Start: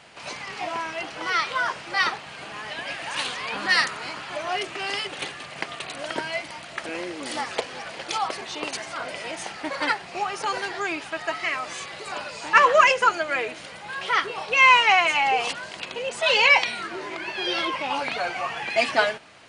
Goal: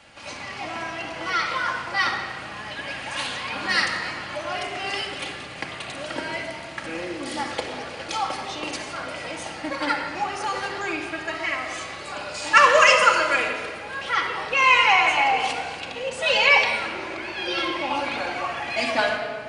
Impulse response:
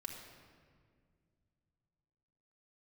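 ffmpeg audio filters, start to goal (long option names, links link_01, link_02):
-filter_complex "[0:a]asettb=1/sr,asplit=3[link_01][link_02][link_03];[link_01]atrim=end=12.344[link_04];[link_02]atrim=start=12.34:end=13.48,asetpts=PTS-STARTPTS,afade=type=in:duration=0.004:curve=qsin,afade=type=out:start_time=1.136:duration=0.004:curve=qsin,highshelf=frequency=3000:gain=11[link_05];[link_03]atrim=start=13.476[link_06];[link_04][link_05]acrossfade=duration=0.004:curve1=hsin:curve2=qsin[link_07];[link_07][link_06]acrossfade=duration=0.004:curve1=qsin:curve2=hsin,acrossover=split=140|2800[link_08][link_09][link_10];[link_08]acontrast=64[link_11];[link_11][link_09][link_10]amix=inputs=3:normalize=0[link_12];[1:a]atrim=start_sample=2205[link_13];[link_12][link_13]afir=irnorm=-1:irlink=0,volume=2.5dB"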